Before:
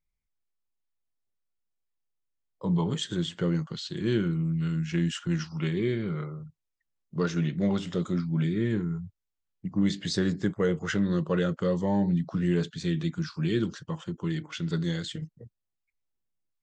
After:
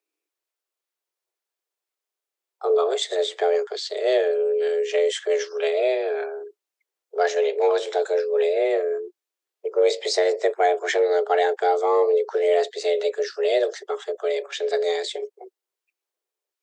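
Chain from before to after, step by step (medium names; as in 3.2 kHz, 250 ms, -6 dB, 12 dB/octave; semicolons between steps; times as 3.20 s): high-pass 110 Hz; frequency shift +260 Hz; trim +6.5 dB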